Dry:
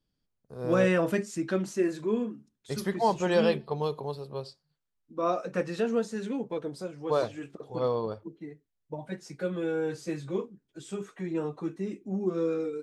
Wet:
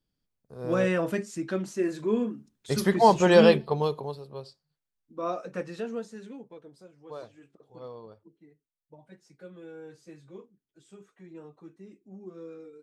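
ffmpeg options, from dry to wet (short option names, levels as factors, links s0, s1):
-af "volume=2.24,afade=t=in:st=1.77:d=1.15:silence=0.375837,afade=t=out:st=3.48:d=0.74:silence=0.298538,afade=t=out:st=5.45:d=1.14:silence=0.281838"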